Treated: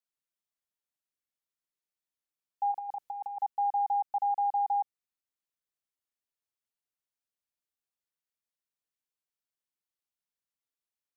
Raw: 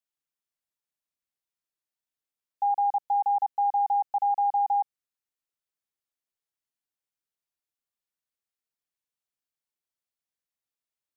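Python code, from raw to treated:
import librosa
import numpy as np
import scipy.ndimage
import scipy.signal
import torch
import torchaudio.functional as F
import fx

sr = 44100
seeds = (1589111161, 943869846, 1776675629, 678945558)

y = fx.over_compress(x, sr, threshold_db=-30.0, ratio=-0.5, at=(2.71, 3.41), fade=0.02)
y = F.gain(torch.from_numpy(y), -4.0).numpy()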